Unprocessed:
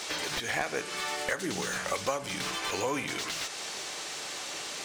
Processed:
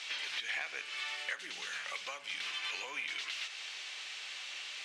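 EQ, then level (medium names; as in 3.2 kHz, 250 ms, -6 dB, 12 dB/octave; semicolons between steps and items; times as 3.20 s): band-pass filter 2.7 kHz, Q 1.9; 0.0 dB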